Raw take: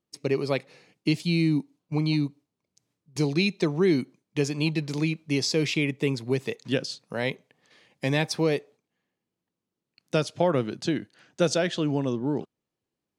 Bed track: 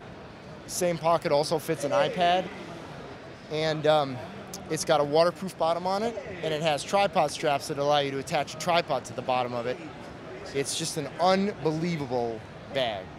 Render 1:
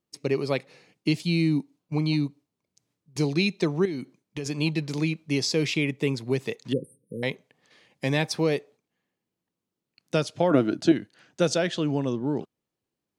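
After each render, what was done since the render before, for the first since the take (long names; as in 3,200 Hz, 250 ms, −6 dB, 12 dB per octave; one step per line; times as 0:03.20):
0:03.85–0:04.46: downward compressor, threshold −28 dBFS
0:06.73–0:07.23: linear-phase brick-wall band-stop 540–8,400 Hz
0:10.51–0:10.92: hollow resonant body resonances 300/640/1,400 Hz, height 13 dB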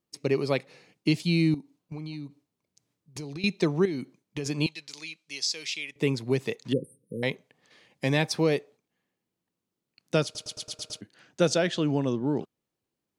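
0:01.54–0:03.44: downward compressor 8 to 1, threshold −34 dBFS
0:04.66–0:05.96: resonant band-pass 5,700 Hz, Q 0.76
0:10.24: stutter in place 0.11 s, 7 plays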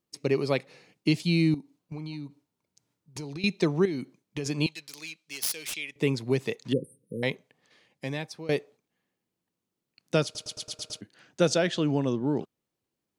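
0:01.99–0:03.34: hollow resonant body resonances 920/1,400 Hz, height 8 dB
0:04.75–0:05.75: phase distortion by the signal itself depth 0.19 ms
0:07.30–0:08.49: fade out, to −19 dB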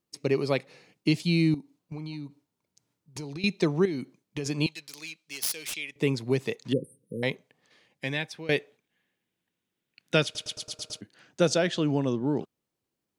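0:07.99–0:10.57: gain on a spectral selection 1,400–3,900 Hz +7 dB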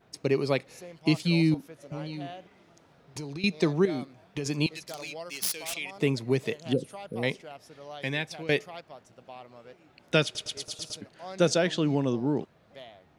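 mix in bed track −19 dB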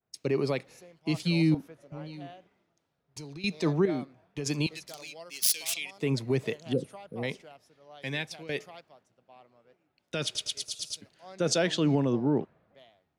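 brickwall limiter −18.5 dBFS, peak gain reduction 10.5 dB
multiband upward and downward expander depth 70%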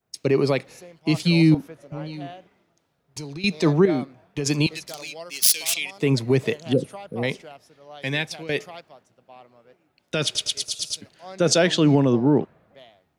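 level +8 dB
brickwall limiter −2 dBFS, peak gain reduction 0.5 dB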